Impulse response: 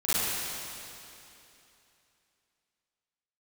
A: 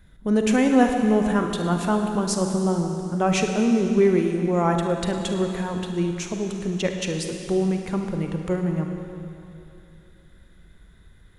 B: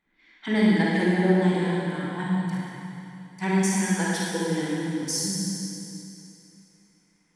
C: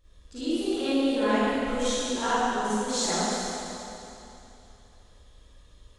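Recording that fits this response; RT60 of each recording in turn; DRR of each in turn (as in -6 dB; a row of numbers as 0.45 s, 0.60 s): C; 2.9 s, 2.9 s, 2.9 s; 3.5 dB, -5.5 dB, -14.5 dB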